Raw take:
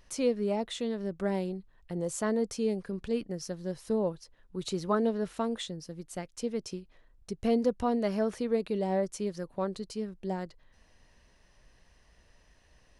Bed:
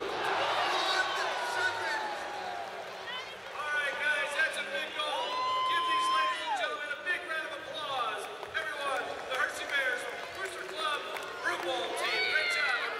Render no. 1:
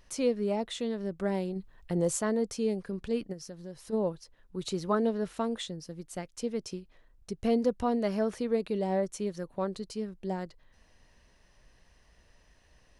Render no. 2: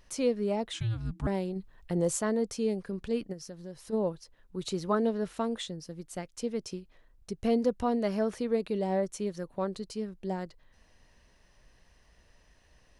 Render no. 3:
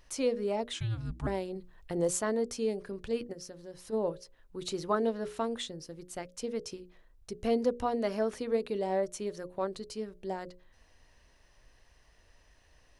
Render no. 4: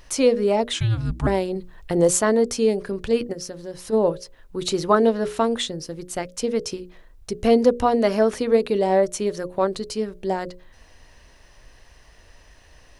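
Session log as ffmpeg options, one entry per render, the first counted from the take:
-filter_complex "[0:a]asplit=3[a][b][c];[a]afade=t=out:st=1.55:d=0.02[d];[b]acontrast=36,afade=t=in:st=1.55:d=0.02,afade=t=out:st=2.17:d=0.02[e];[c]afade=t=in:st=2.17:d=0.02[f];[d][e][f]amix=inputs=3:normalize=0,asplit=3[g][h][i];[g]afade=t=out:st=3.32:d=0.02[j];[h]acompressor=threshold=-44dB:ratio=2:attack=3.2:release=140:knee=1:detection=peak,afade=t=in:st=3.32:d=0.02,afade=t=out:st=3.92:d=0.02[k];[i]afade=t=in:st=3.92:d=0.02[l];[j][k][l]amix=inputs=3:normalize=0,asettb=1/sr,asplit=3[m][n][o];[m]atrim=end=9.004[p];[n]atrim=start=9:end=9.59,asetpts=PTS-STARTPTS,afade=t=in:d=0.004:c=qsin,afade=t=out:st=0.586:d=0.004:c=qsin,bandreject=f=4.9k:w=10[q];[o]atrim=start=9.586[r];[p][q]acrossfade=d=0.004:c1=hsin:c2=qsin[s];[s][r]acrossfade=d=0.004:c1=qsin:c2=hsin"
-filter_complex "[0:a]asettb=1/sr,asplit=3[a][b][c];[a]atrim=end=0.734[d];[b]atrim=start=0.73:end=1.27,asetpts=PTS-STARTPTS,afade=t=in:d=0.004:c=qsin,afade=t=out:st=0.536:d=0.004:c=qsin,afreqshift=-340[e];[c]atrim=start=1.266[f];[d][e]acrossfade=d=0.004:c1=hsin:c2=qsin[g];[g][f]acrossfade=d=0.004:c1=qsin:c2=hsin"
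-af "equalizer=f=190:t=o:w=0.48:g=-7.5,bandreject=f=60:t=h:w=6,bandreject=f=120:t=h:w=6,bandreject=f=180:t=h:w=6,bandreject=f=240:t=h:w=6,bandreject=f=300:t=h:w=6,bandreject=f=360:t=h:w=6,bandreject=f=420:t=h:w=6,bandreject=f=480:t=h:w=6,bandreject=f=540:t=h:w=6,bandreject=f=600:t=h:w=6"
-af "volume=12dB"

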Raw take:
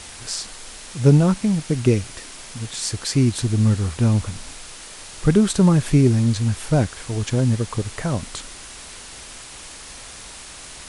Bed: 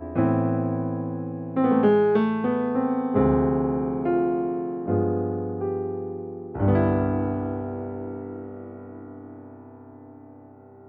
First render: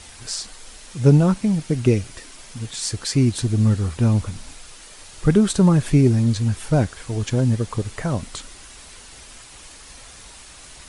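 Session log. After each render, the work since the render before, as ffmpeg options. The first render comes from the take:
-af "afftdn=nr=6:nf=-39"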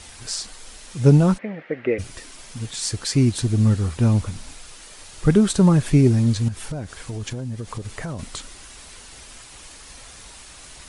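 -filter_complex "[0:a]asplit=3[a][b][c];[a]afade=t=out:st=1.37:d=0.02[d];[b]highpass=420,equalizer=f=530:t=q:w=4:g=8,equalizer=f=970:t=q:w=4:g=-6,equalizer=f=1.9k:t=q:w=4:g=10,lowpass=f=2.4k:w=0.5412,lowpass=f=2.4k:w=1.3066,afade=t=in:st=1.37:d=0.02,afade=t=out:st=1.98:d=0.02[e];[c]afade=t=in:st=1.98:d=0.02[f];[d][e][f]amix=inputs=3:normalize=0,asettb=1/sr,asplit=3[g][h][i];[g]atrim=end=6.484[j];[h]atrim=start=6.48:end=8.19,asetpts=PTS-STARTPTS,afade=t=in:d=0.004:c=qsin,afade=t=out:st=1.706:d=0.004:c=qsin,acompressor=threshold=-26dB:ratio=6:attack=3.2:release=140:knee=1:detection=peak[k];[i]atrim=start=8.186[l];[j][k]acrossfade=d=0.004:c1=hsin:c2=qsin[m];[m][l]acrossfade=d=0.004:c1=qsin:c2=hsin"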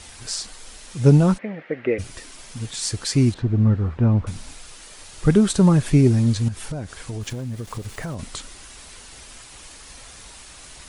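-filter_complex "[0:a]asettb=1/sr,asplit=3[a][b][c];[a]atrim=end=3.344[d];[b]atrim=start=3.34:end=4.27,asetpts=PTS-STARTPTS,afade=t=in:d=0.004:c=qsin,afade=t=out:st=0.926:d=0.004:c=qsin,lowpass=1.7k[e];[c]atrim=start=4.266[f];[d][e]acrossfade=d=0.004:c1=hsin:c2=qsin[g];[g][f]acrossfade=d=0.004:c1=qsin:c2=hsin,asettb=1/sr,asplit=3[h][i][j];[h]atrim=end=7.214[k];[i]atrim=start=7.21:end=8.15,asetpts=PTS-STARTPTS,afade=t=in:d=0.004:c=qsin,afade=t=out:st=0.936:d=0.004:c=qsin,aeval=exprs='val(0)*gte(abs(val(0)),0.00794)':c=same[l];[j]atrim=start=8.146[m];[k][l]acrossfade=d=0.004:c1=hsin:c2=qsin[n];[n][m]acrossfade=d=0.004:c1=qsin:c2=hsin"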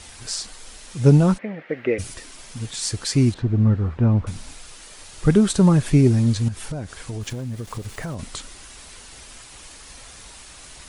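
-filter_complex "[0:a]asettb=1/sr,asplit=3[a][b][c];[a]atrim=end=1.694[d];[b]atrim=start=1.69:end=2.14,asetpts=PTS-STARTPTS,afade=t=in:d=0.004:c=qsin,afade=t=out:st=0.446:d=0.004:c=qsin,highshelf=f=5.9k:g=10.5[e];[c]atrim=start=2.136[f];[d][e]acrossfade=d=0.004:c1=hsin:c2=qsin[g];[g][f]acrossfade=d=0.004:c1=qsin:c2=hsin"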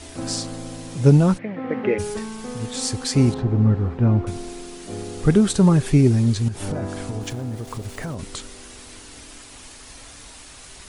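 -filter_complex "[1:a]volume=-9.5dB[a];[0:a][a]amix=inputs=2:normalize=0"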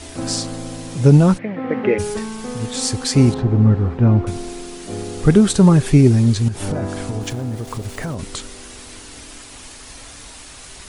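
-af "volume=4dB,alimiter=limit=-1dB:level=0:latency=1"

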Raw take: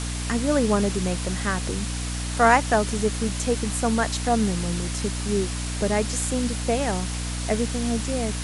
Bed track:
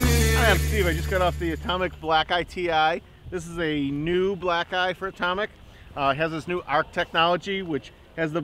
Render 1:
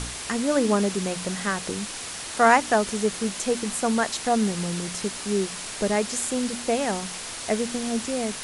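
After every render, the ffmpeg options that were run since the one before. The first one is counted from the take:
-af "bandreject=f=60:t=h:w=4,bandreject=f=120:t=h:w=4,bandreject=f=180:t=h:w=4,bandreject=f=240:t=h:w=4,bandreject=f=300:t=h:w=4"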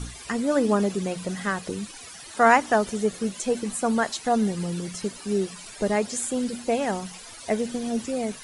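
-af "afftdn=nr=14:nf=-35"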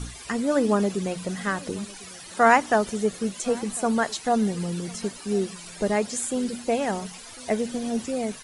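-filter_complex "[0:a]asplit=2[a][b];[b]adelay=1050,volume=-22dB,highshelf=f=4k:g=-23.6[c];[a][c]amix=inputs=2:normalize=0"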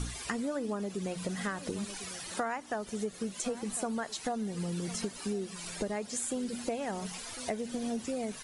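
-af "acompressor=threshold=-31dB:ratio=12"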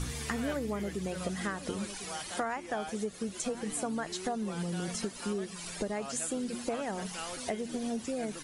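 -filter_complex "[1:a]volume=-21.5dB[a];[0:a][a]amix=inputs=2:normalize=0"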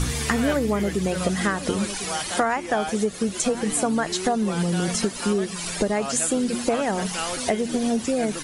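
-af "volume=11.5dB"

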